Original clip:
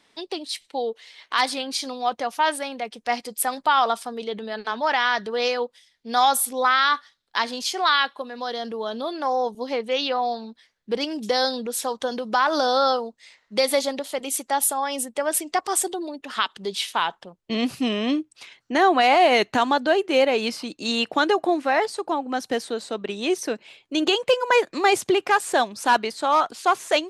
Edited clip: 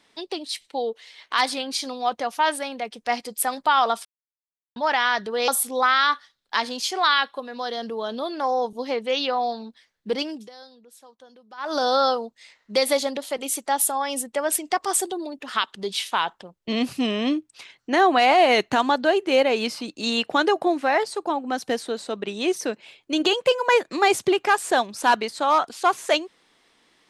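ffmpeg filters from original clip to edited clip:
-filter_complex "[0:a]asplit=6[a][b][c][d][e][f];[a]atrim=end=4.05,asetpts=PTS-STARTPTS,afade=t=out:st=4.046:d=0.004:c=hsin[g];[b]atrim=start=4.05:end=4.76,asetpts=PTS-STARTPTS,volume=0[h];[c]atrim=start=4.76:end=5.482,asetpts=PTS-STARTPTS,afade=t=in:d=0.004:c=hsin[i];[d]atrim=start=6.298:end=11.31,asetpts=PTS-STARTPTS,afade=t=out:st=4.642:d=0.37:c=qsin:silence=0.0707946[j];[e]atrim=start=11.31:end=12.39,asetpts=PTS-STARTPTS,volume=-23dB[k];[f]atrim=start=12.39,asetpts=PTS-STARTPTS,afade=t=in:d=0.37:c=qsin:silence=0.0707946[l];[g][h][i]concat=n=3:v=0:a=1[m];[j][k][l]concat=n=3:v=0:a=1[n];[m][n]acrossfade=d=0.004:c1=hsin:c2=hsin"

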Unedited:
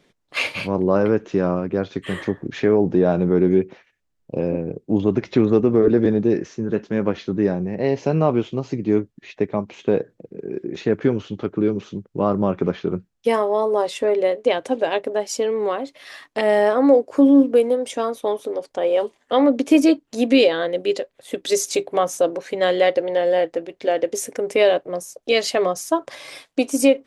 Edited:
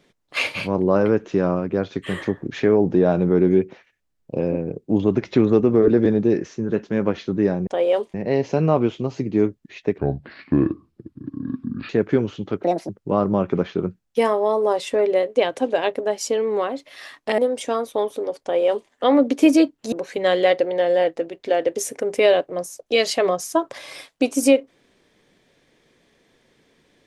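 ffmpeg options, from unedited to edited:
-filter_complex "[0:a]asplit=9[a][b][c][d][e][f][g][h][i];[a]atrim=end=7.672[j];[b]atrim=start=18.708:end=19.182[k];[c]atrim=start=7.668:end=9.514[l];[d]atrim=start=9.51:end=10.81,asetpts=PTS-STARTPTS,asetrate=29988,aresample=44100[m];[e]atrim=start=10.806:end=11.554[n];[f]atrim=start=11.55:end=11.98,asetpts=PTS-STARTPTS,asetrate=72765,aresample=44100[o];[g]atrim=start=11.976:end=16.472[p];[h]atrim=start=17.668:end=20.212[q];[i]atrim=start=22.288[r];[j][k]acrossfade=d=0.004:c1=hsin:c2=hsin[s];[s][l]acrossfade=d=0.004:c1=hsin:c2=hsin[t];[t][m]acrossfade=d=0.004:c1=hsin:c2=hsin[u];[u][n]acrossfade=d=0.004:c1=hsin:c2=hsin[v];[v][o]acrossfade=d=0.004:c1=hsin:c2=hsin[w];[w][p]acrossfade=d=0.004:c1=hsin:c2=hsin[x];[x][q]acrossfade=d=0.004:c1=hsin:c2=hsin[y];[y][r]acrossfade=d=0.004:c1=hsin:c2=hsin"

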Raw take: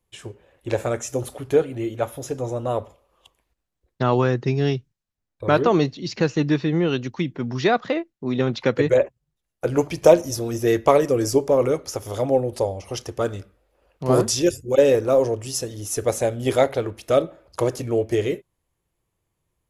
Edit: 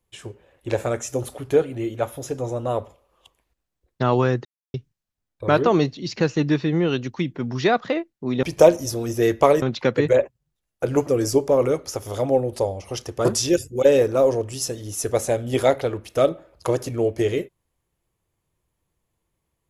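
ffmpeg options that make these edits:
-filter_complex "[0:a]asplit=7[a][b][c][d][e][f][g];[a]atrim=end=4.45,asetpts=PTS-STARTPTS,afade=t=out:st=4.446:d=0.004:c=hsin[h];[b]atrim=start=4.45:end=4.74,asetpts=PTS-STARTPTS,volume=0[i];[c]atrim=start=4.74:end=8.432,asetpts=PTS-STARTPTS,afade=t=in:d=0.004:c=hsin[j];[d]atrim=start=9.878:end=11.072[k];[e]atrim=start=8.428:end=9.882[l];[f]atrim=start=11.068:end=13.252[m];[g]atrim=start=14.178[n];[h][i][j]concat=n=3:v=0:a=1[o];[o][k]acrossfade=d=0.004:c1=hsin:c2=hsin[p];[p][l]acrossfade=d=0.004:c1=hsin:c2=hsin[q];[q][m]acrossfade=d=0.004:c1=hsin:c2=hsin[r];[r][n]acrossfade=d=0.004:c1=hsin:c2=hsin"

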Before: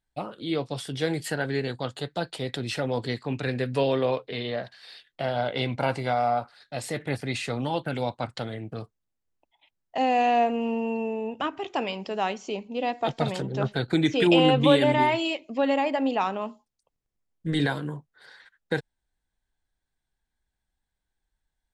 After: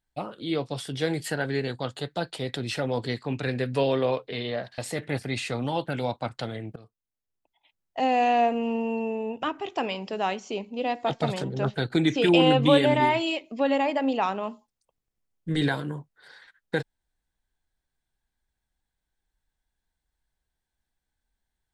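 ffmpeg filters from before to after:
-filter_complex "[0:a]asplit=3[a][b][c];[a]atrim=end=4.782[d];[b]atrim=start=6.758:end=8.74,asetpts=PTS-STARTPTS,afade=t=out:st=1.978:d=0.004:c=hsin:silence=0.149624[e];[c]atrim=start=8.74,asetpts=PTS-STARTPTS,afade=t=in:d=1.28:silence=0.149624[f];[e][f]concat=n=2:v=0:a=1[g];[d][g]acrossfade=d=0.004:c1=hsin:c2=hsin"

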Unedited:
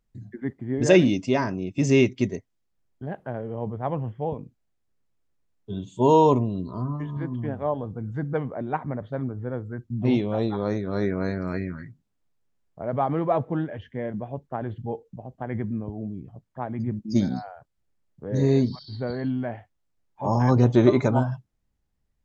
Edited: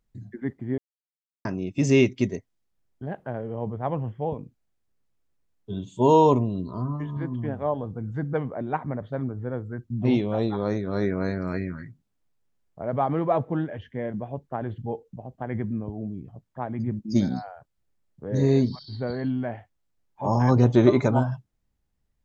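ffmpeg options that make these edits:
-filter_complex "[0:a]asplit=3[a][b][c];[a]atrim=end=0.78,asetpts=PTS-STARTPTS,afade=t=out:st=0.776:d=0.004:c=hsin[d];[b]atrim=start=0.78:end=1.45,asetpts=PTS-STARTPTS,volume=0[e];[c]atrim=start=1.45,asetpts=PTS-STARTPTS,afade=t=in:d=0.004:c=hsin[f];[d][e][f]concat=n=3:v=0:a=1"

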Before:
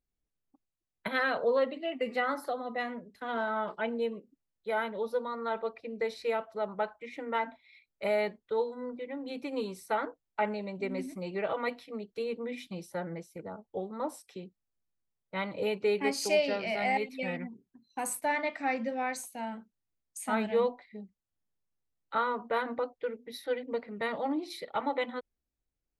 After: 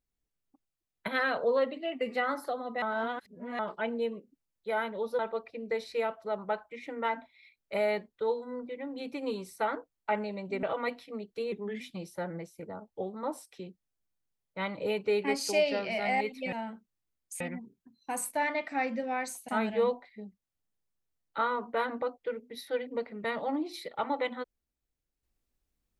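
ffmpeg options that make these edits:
-filter_complex "[0:a]asplit=10[a][b][c][d][e][f][g][h][i][j];[a]atrim=end=2.822[k];[b]atrim=start=2.818:end=3.592,asetpts=PTS-STARTPTS,areverse[l];[c]atrim=start=3.588:end=5.192[m];[d]atrim=start=5.488:end=10.932[n];[e]atrim=start=11.428:end=12.324[o];[f]atrim=start=12.32:end=12.57,asetpts=PTS-STARTPTS,asetrate=38808,aresample=44100,atrim=end_sample=12528,asetpts=PTS-STARTPTS[p];[g]atrim=start=12.566:end=17.292[q];[h]atrim=start=19.368:end=20.252[r];[i]atrim=start=17.288:end=19.372[s];[j]atrim=start=20.248[t];[k][l]acrossfade=d=0.004:c1=hsin:c2=hsin[u];[u][m]acrossfade=d=0.004:c1=hsin:c2=hsin[v];[v][n]acrossfade=d=0.004:c1=hsin:c2=hsin[w];[w][o]acrossfade=d=0.004:c1=hsin:c2=hsin[x];[x][p]acrossfade=d=0.004:c1=hsin:c2=hsin[y];[y][q]acrossfade=d=0.004:c1=hsin:c2=hsin[z];[z][r]acrossfade=d=0.004:c1=hsin:c2=hsin[aa];[aa][s]acrossfade=d=0.004:c1=hsin:c2=hsin[ab];[ab][t]acrossfade=d=0.004:c1=hsin:c2=hsin"

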